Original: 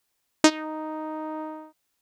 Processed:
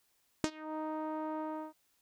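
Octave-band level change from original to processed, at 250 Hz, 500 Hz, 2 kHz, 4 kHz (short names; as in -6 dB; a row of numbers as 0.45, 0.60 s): -11.5, -10.5, -16.5, -19.5 dB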